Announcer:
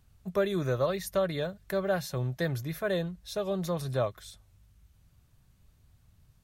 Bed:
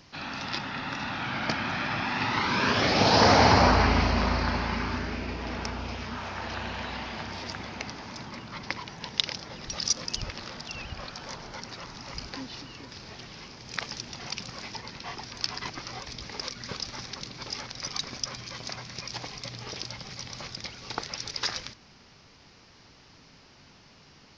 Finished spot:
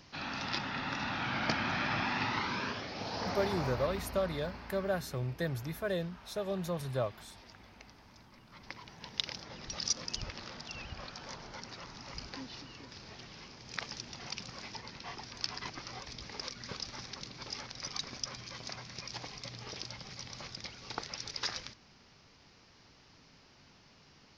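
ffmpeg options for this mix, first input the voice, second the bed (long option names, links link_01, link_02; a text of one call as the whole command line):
ffmpeg -i stem1.wav -i stem2.wav -filter_complex "[0:a]adelay=3000,volume=-4.5dB[link_01];[1:a]volume=9.5dB,afade=type=out:start_time=2.01:duration=0.84:silence=0.16788,afade=type=in:start_time=8.39:duration=1.14:silence=0.237137[link_02];[link_01][link_02]amix=inputs=2:normalize=0" out.wav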